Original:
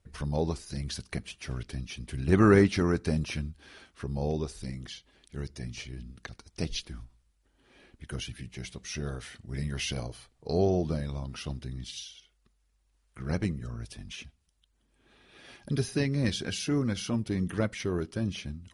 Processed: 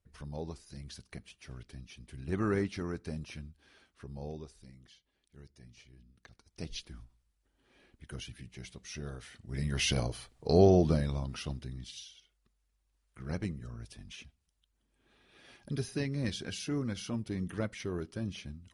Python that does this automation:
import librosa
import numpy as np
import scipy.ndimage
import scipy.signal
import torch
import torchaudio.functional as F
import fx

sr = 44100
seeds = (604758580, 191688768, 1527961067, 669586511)

y = fx.gain(x, sr, db=fx.line((4.27, -11.0), (4.69, -17.0), (6.07, -17.0), (6.8, -6.5), (9.29, -6.5), (9.88, 3.5), (10.89, 3.5), (11.94, -6.0)))